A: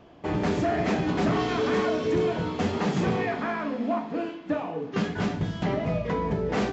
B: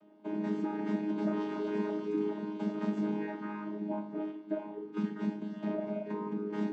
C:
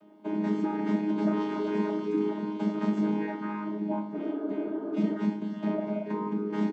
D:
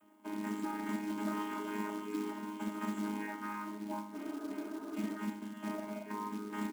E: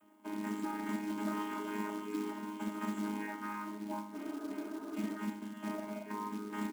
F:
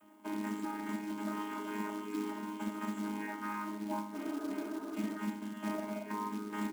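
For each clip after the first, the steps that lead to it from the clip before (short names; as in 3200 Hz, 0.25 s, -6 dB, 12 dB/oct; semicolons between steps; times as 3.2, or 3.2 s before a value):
chord vocoder bare fifth, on G#3; gain -7 dB
spectral repair 4.2–5.14, 240–1800 Hz before; doubler 28 ms -12 dB; gain +5 dB
EQ curve 110 Hz 0 dB, 160 Hz -19 dB, 240 Hz -1 dB, 470 Hz -12 dB, 1100 Hz +3 dB, 3200 Hz +1 dB, 4900 Hz -28 dB, 7100 Hz +12 dB; short-mantissa float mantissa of 2-bit; gain -4 dB
nothing audible
notches 60/120/180/240/300/360/420 Hz; vocal rider 0.5 s; gain +1 dB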